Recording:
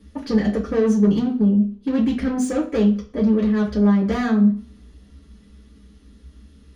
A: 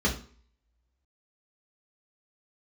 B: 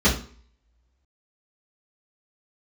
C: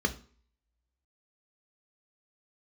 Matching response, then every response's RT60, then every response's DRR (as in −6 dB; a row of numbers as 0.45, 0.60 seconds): A; 0.45, 0.45, 0.45 seconds; −3.0, −9.5, 6.5 decibels